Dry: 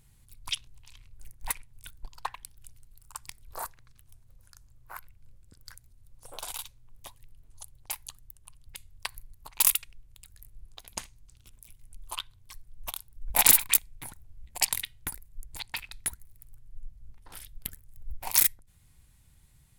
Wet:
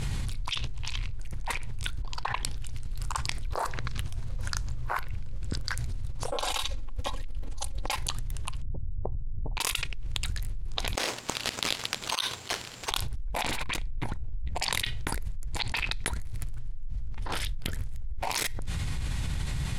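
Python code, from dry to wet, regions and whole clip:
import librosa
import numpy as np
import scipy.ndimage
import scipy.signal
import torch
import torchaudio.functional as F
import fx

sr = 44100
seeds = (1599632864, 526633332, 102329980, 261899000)

y = fx.chain(x, sr, fx.comb(ms=3.7, depth=0.75),
    fx.env_flatten(amount_pct=100), at=(6.32, 7.96))
y = fx.chain(y, sr, fx.gaussian_blur(sigma=18.0),
    fx.env_flatten(amount_pct=50), at=(8.62, 9.57))
y = fx.chain(y, sr, fx.highpass(hz=380.0, slope=12),
    fx.high_shelf(hz=11000.0, db=-3.5),
    fx.resample_bad(factor=6, down='none', up='zero_stuff'), at=(10.95, 12.91))
y = fx.chain(y, sr, fx.lowpass(hz=4000.0, slope=6),
    fx.low_shelf(hz=200.0, db=9.5),
    fx.over_compress(threshold_db=-38.0, ratio=-1.0), at=(13.44, 14.61))
y = scipy.signal.sosfilt(scipy.signal.butter(2, 5300.0, 'lowpass', fs=sr, output='sos'), y)
y = fx.dynamic_eq(y, sr, hz=450.0, q=1.1, threshold_db=-59.0, ratio=4.0, max_db=6)
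y = fx.env_flatten(y, sr, amount_pct=100)
y = y * 10.0 ** (-6.5 / 20.0)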